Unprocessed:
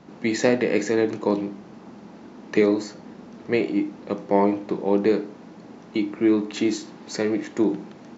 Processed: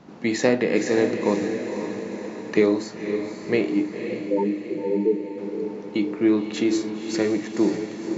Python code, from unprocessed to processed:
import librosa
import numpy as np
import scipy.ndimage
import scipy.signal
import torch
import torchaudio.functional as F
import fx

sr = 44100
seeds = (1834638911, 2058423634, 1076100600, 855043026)

y = fx.spec_topn(x, sr, count=4, at=(3.99, 5.38))
y = fx.echo_diffused(y, sr, ms=529, feedback_pct=57, wet_db=-7.5)